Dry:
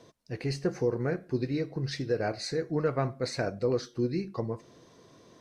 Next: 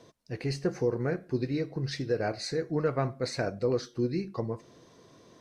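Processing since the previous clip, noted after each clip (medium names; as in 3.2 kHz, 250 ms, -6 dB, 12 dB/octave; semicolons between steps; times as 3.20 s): no audible change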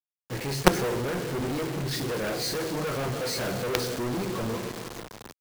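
two-slope reverb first 0.2 s, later 4.6 s, from -21 dB, DRR -2.5 dB; companded quantiser 2-bit; three bands expanded up and down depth 40%; trim -3.5 dB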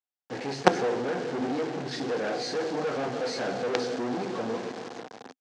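cabinet simulation 180–6500 Hz, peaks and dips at 260 Hz +8 dB, 470 Hz +6 dB, 760 Hz +10 dB, 1.6 kHz +4 dB; trim -4 dB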